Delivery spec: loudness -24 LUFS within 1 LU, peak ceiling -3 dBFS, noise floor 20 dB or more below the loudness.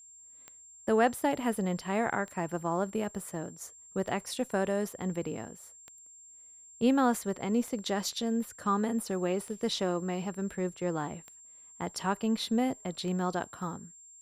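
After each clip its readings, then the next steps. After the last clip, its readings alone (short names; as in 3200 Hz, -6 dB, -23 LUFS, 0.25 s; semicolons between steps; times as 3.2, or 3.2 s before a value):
clicks 8; steady tone 7400 Hz; tone level -51 dBFS; loudness -32.0 LUFS; peak -15.0 dBFS; loudness target -24.0 LUFS
-> de-click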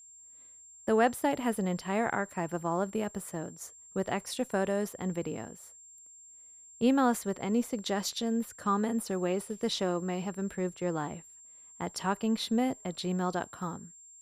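clicks 0; steady tone 7400 Hz; tone level -51 dBFS
-> notch 7400 Hz, Q 30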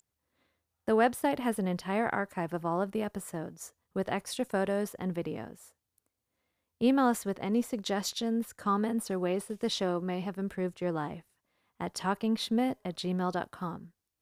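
steady tone none; loudness -32.0 LUFS; peak -15.0 dBFS; loudness target -24.0 LUFS
-> gain +8 dB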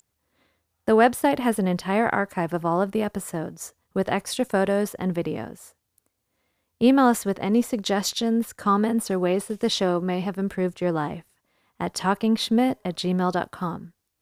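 loudness -24.0 LUFS; peak -7.0 dBFS; noise floor -77 dBFS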